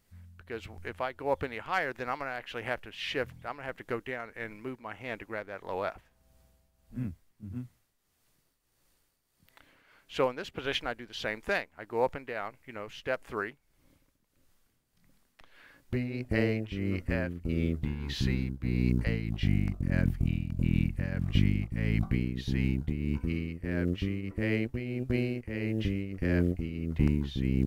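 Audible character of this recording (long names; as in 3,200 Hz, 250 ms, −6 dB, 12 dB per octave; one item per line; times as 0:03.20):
tremolo triangle 1.6 Hz, depth 70%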